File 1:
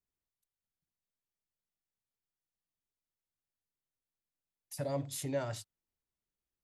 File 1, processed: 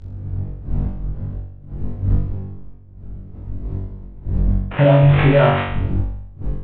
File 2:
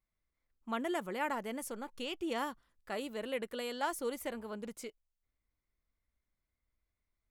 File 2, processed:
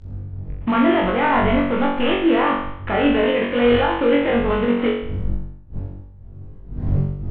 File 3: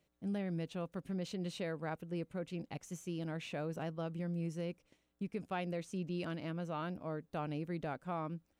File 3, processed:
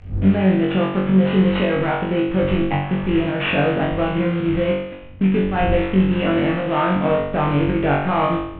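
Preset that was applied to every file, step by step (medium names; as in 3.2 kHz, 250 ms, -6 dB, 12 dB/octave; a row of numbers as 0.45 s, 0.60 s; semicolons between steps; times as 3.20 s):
CVSD coder 16 kbps; wind noise 91 Hz -55 dBFS; in parallel at -3 dB: compression, threshold -46 dBFS; on the sum: peak limiter -33.5 dBFS; volume shaper 109 bpm, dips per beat 1, -11 dB, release 122 ms; distance through air 75 m; flutter echo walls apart 3.6 m, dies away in 0.71 s; normalise loudness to -19 LUFS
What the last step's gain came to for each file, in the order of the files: +25.0 dB, +21.0 dB, +21.0 dB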